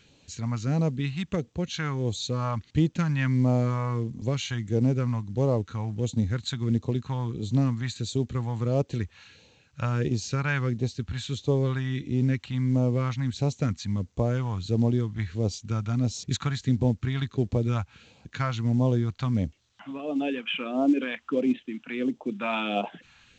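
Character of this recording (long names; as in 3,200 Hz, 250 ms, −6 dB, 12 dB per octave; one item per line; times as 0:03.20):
phaser sweep stages 2, 1.5 Hz, lowest notch 400–1,500 Hz
A-law companding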